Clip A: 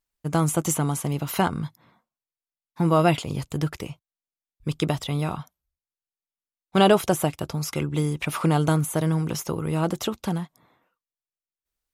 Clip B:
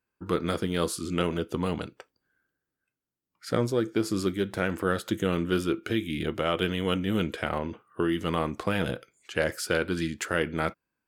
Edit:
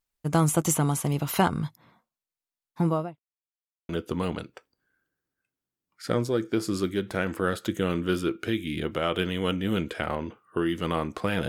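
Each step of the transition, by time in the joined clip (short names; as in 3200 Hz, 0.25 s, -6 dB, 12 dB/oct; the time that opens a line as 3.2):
clip A
2.68–3.2 studio fade out
3.2–3.89 mute
3.89 switch to clip B from 1.32 s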